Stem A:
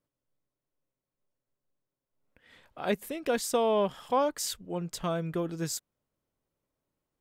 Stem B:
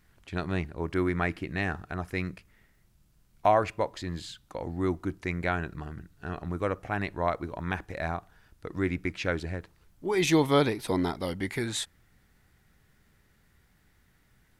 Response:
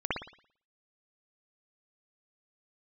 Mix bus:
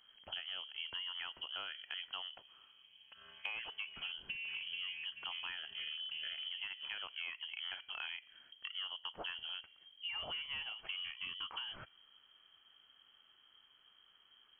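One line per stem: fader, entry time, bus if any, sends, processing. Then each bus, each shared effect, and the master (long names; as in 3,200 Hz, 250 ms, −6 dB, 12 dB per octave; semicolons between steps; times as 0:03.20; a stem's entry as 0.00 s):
+0.5 dB, 0.75 s, no send, echo send −14 dB, channel vocoder with a chord as carrier bare fifth, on D#3; transient designer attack +2 dB, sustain +7 dB; upward compression, threshold −33 dBFS; automatic ducking −11 dB, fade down 1.80 s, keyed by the second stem
−13.5 dB, 0.00 s, no send, no echo send, hum removal 417.6 Hz, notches 3; sine wavefolder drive 6 dB, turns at −10.5 dBFS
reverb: not used
echo: repeating echo 432 ms, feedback 29%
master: voice inversion scrambler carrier 3,200 Hz; downward compressor 12 to 1, threshold −40 dBFS, peak gain reduction 15.5 dB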